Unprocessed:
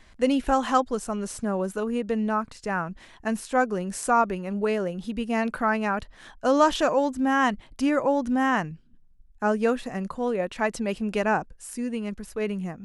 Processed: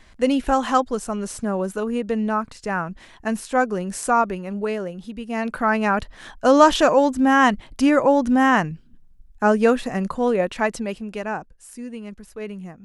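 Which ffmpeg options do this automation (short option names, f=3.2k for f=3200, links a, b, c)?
-af "volume=13dB,afade=t=out:st=4.05:d=1.17:silence=0.473151,afade=t=in:st=5.22:d=0.73:silence=0.316228,afade=t=out:st=10.39:d=0.67:silence=0.298538"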